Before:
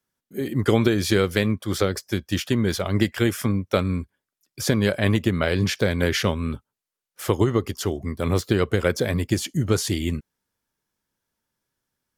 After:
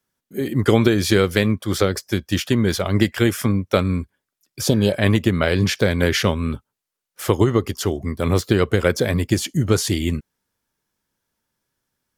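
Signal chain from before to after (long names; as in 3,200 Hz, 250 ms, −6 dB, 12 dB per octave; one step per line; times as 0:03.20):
healed spectral selection 0:04.68–0:04.92, 1,000–2,500 Hz
level +3.5 dB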